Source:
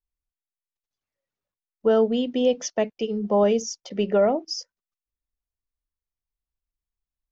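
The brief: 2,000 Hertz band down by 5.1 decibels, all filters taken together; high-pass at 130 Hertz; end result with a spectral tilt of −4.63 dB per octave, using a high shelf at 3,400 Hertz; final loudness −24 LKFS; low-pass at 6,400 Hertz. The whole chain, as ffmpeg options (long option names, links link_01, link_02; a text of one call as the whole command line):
ffmpeg -i in.wav -af "highpass=130,lowpass=6400,equalizer=frequency=2000:width_type=o:gain=-5,highshelf=frequency=3400:gain=-6,volume=-0.5dB" out.wav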